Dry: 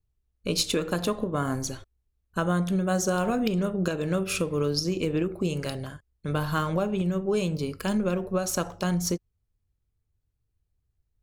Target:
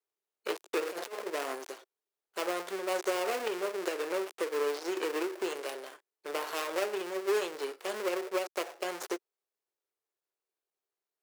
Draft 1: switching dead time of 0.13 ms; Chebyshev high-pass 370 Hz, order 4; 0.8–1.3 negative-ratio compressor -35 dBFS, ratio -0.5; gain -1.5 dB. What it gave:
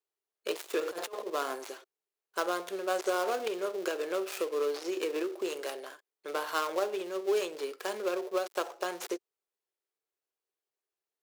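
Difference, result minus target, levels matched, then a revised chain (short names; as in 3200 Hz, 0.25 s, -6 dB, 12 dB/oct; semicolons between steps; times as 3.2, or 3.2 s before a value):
switching dead time: distortion -4 dB
switching dead time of 0.35 ms; Chebyshev high-pass 370 Hz, order 4; 0.8–1.3 negative-ratio compressor -35 dBFS, ratio -0.5; gain -1.5 dB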